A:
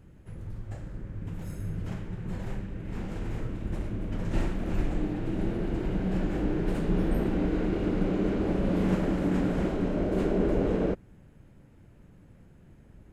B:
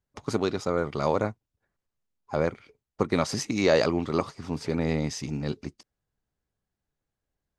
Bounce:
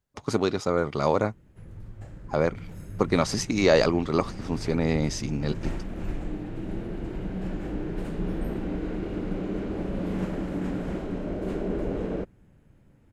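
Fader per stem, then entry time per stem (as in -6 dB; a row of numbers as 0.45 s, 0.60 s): -3.5 dB, +2.0 dB; 1.30 s, 0.00 s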